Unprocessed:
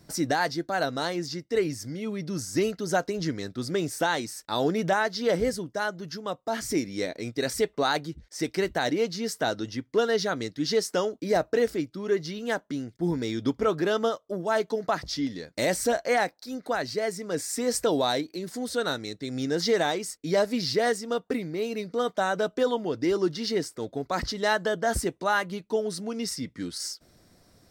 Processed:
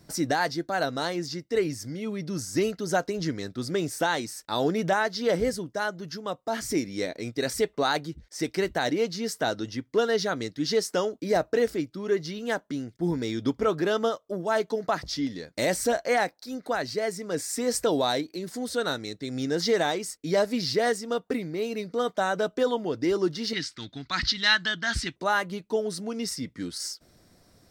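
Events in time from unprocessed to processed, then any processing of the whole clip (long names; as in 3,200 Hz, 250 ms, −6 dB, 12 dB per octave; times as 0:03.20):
0:23.53–0:25.16: drawn EQ curve 110 Hz 0 dB, 320 Hz −5 dB, 470 Hz −21 dB, 1,500 Hz +5 dB, 4,000 Hz +12 dB, 13,000 Hz −17 dB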